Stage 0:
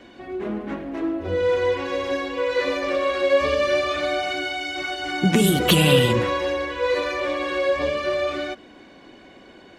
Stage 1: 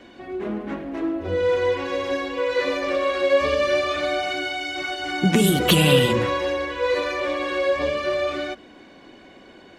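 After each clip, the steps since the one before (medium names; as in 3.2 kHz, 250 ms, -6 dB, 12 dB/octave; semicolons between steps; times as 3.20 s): hum notches 60/120 Hz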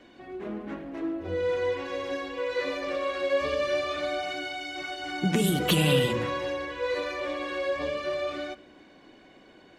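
simulated room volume 2800 m³, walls furnished, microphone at 0.48 m; trim -7 dB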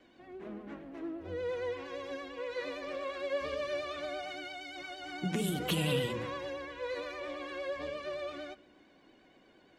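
vibrato 8.7 Hz 49 cents; trim -8.5 dB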